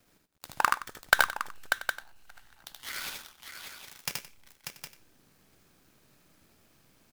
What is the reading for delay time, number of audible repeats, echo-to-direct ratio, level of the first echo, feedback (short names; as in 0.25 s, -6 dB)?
77 ms, 6, -0.5 dB, -3.0 dB, no steady repeat